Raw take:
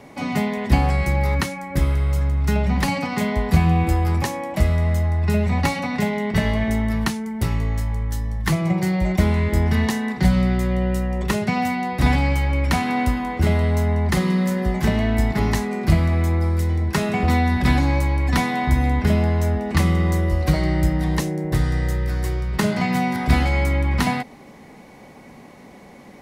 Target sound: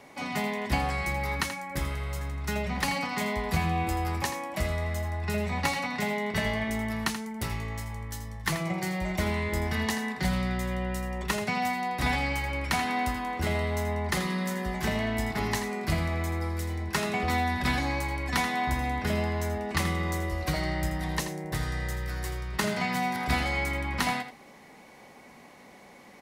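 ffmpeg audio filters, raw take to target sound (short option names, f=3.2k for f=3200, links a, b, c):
-af "lowshelf=f=460:g=-10.5,aecho=1:1:82:0.299,volume=-3dB"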